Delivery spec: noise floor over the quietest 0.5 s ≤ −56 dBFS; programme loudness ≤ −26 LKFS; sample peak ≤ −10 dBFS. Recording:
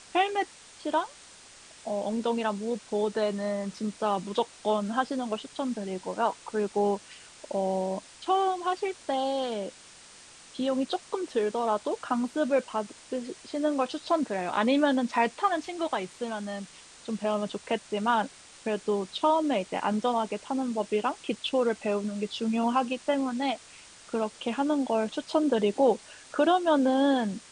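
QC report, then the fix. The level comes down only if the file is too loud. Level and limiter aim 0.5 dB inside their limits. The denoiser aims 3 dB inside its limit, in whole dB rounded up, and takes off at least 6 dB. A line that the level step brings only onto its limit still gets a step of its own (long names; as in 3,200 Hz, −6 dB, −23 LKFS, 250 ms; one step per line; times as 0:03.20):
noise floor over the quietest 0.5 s −51 dBFS: out of spec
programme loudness −29.0 LKFS: in spec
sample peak −12.0 dBFS: in spec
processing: broadband denoise 8 dB, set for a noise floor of −51 dBFS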